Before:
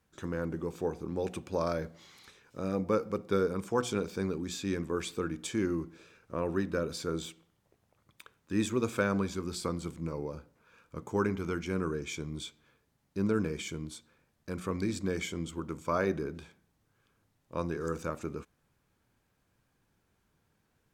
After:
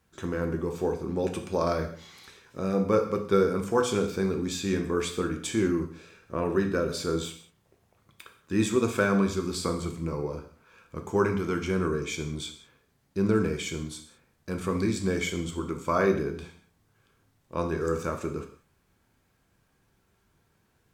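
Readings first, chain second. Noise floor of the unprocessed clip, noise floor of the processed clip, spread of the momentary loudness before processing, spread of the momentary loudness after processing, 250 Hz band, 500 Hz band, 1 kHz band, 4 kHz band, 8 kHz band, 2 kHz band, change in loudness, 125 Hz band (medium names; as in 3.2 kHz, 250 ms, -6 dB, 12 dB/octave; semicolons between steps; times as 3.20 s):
-75 dBFS, -70 dBFS, 12 LU, 14 LU, +5.5 dB, +6.0 dB, +5.5 dB, +5.5 dB, +5.5 dB, +5.5 dB, +5.5 dB, +5.0 dB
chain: gated-style reverb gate 220 ms falling, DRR 4 dB; trim +4 dB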